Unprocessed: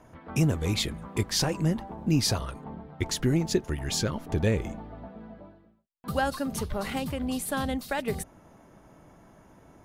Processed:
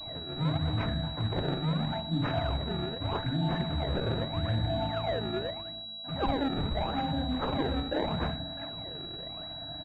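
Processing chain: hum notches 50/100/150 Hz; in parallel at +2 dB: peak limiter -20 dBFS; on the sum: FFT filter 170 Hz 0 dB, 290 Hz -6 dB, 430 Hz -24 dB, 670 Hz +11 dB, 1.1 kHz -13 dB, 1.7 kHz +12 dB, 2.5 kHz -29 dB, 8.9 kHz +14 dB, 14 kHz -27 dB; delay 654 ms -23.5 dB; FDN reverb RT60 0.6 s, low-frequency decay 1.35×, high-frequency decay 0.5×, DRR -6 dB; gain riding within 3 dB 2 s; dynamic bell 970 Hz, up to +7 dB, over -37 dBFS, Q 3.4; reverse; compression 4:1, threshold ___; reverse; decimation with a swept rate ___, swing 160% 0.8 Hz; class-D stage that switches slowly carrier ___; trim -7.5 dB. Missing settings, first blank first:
-21 dBFS, 24×, 3.9 kHz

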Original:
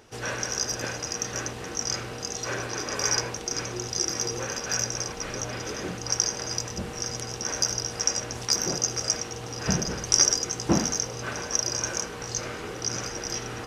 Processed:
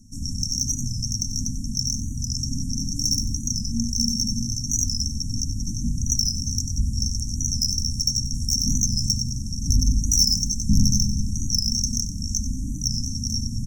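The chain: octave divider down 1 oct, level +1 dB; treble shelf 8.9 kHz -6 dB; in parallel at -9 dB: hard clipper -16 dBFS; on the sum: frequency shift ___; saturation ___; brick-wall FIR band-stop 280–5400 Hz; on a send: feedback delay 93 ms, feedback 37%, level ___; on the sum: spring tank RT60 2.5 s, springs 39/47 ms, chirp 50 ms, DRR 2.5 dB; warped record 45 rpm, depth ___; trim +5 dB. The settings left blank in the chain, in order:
-130 Hz, -15.5 dBFS, -12 dB, 100 cents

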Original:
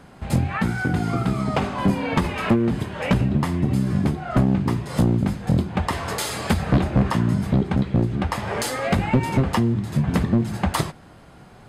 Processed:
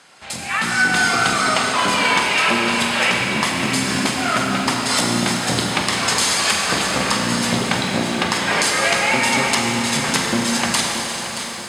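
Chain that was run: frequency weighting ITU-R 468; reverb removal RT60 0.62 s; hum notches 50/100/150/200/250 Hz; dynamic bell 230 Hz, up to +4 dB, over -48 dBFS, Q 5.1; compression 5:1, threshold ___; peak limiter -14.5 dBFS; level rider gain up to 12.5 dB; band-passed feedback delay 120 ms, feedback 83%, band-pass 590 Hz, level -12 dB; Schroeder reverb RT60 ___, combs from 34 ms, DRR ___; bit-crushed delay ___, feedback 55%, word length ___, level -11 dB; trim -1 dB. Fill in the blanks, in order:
-27 dBFS, 3.5 s, -0.5 dB, 626 ms, 7-bit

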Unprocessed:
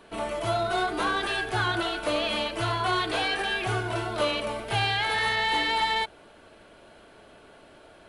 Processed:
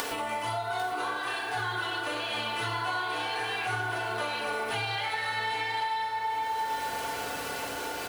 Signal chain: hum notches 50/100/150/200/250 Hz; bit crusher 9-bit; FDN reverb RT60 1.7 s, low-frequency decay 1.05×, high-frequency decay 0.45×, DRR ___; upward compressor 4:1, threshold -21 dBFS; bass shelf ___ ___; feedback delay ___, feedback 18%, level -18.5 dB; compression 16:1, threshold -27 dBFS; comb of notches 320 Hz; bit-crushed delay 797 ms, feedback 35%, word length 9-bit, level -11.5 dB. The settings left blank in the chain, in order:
-3.5 dB, 470 Hz, -10 dB, 773 ms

